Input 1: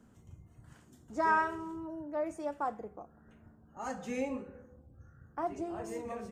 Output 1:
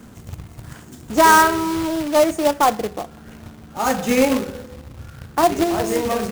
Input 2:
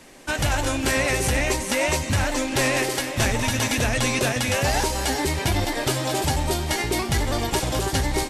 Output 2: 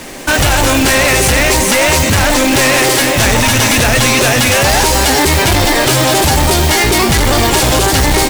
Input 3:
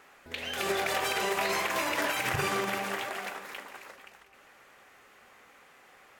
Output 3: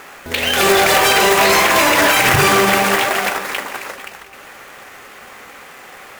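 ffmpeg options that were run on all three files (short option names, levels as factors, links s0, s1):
-af "apsyclip=15,acrusher=bits=2:mode=log:mix=0:aa=0.000001,volume=0.562"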